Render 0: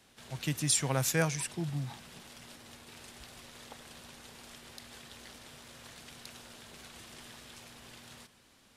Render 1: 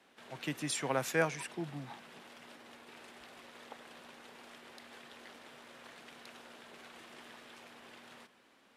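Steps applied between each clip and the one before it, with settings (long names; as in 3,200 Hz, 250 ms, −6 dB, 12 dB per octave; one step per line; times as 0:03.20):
three-way crossover with the lows and the highs turned down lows −21 dB, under 210 Hz, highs −12 dB, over 3,000 Hz
level +1 dB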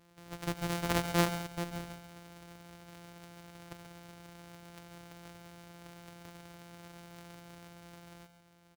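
samples sorted by size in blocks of 256 samples
single-tap delay 138 ms −12 dB
level +2 dB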